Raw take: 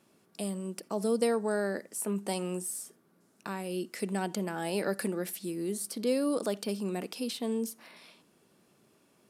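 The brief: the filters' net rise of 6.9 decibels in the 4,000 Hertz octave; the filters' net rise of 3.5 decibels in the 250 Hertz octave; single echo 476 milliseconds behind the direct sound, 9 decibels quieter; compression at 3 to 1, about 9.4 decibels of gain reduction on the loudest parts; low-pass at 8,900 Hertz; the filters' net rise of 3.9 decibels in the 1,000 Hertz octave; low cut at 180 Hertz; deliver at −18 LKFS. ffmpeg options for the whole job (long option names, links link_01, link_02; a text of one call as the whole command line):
ffmpeg -i in.wav -af "highpass=180,lowpass=8900,equalizer=frequency=250:width_type=o:gain=6,equalizer=frequency=1000:width_type=o:gain=4.5,equalizer=frequency=4000:width_type=o:gain=8.5,acompressor=threshold=-33dB:ratio=3,aecho=1:1:476:0.355,volume=18dB" out.wav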